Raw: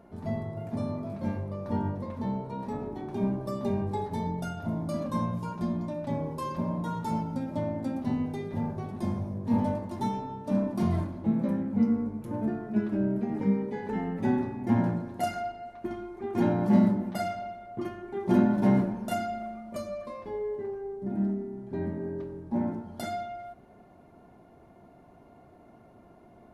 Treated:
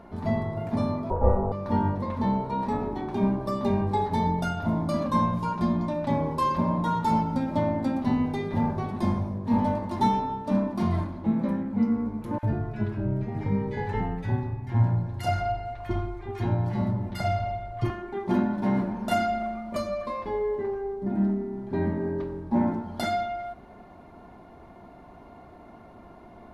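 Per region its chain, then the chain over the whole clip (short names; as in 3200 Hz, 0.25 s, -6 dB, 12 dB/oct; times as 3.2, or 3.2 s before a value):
1.1–1.52 LPF 1100 Hz + bell 340 Hz +13.5 dB 3 oct + ring modulator 290 Hz
12.38–17.9 resonant low shelf 160 Hz +9.5 dB, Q 3 + bands offset in time highs, lows 50 ms, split 1300 Hz
whole clip: low shelf 270 Hz +11 dB; vocal rider within 5 dB 0.5 s; graphic EQ 125/1000/2000/4000 Hz -7/+8/+5/+7 dB; gain -4 dB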